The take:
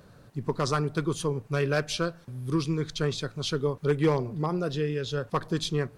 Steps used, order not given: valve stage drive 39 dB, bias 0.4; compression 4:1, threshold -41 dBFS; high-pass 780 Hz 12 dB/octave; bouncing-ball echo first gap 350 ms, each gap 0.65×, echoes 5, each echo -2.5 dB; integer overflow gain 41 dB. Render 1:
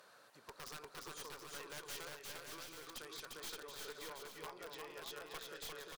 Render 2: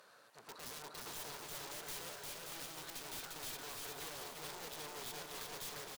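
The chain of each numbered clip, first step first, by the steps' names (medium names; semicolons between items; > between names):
compression > high-pass > valve stage > integer overflow > bouncing-ball echo; valve stage > high-pass > integer overflow > bouncing-ball echo > compression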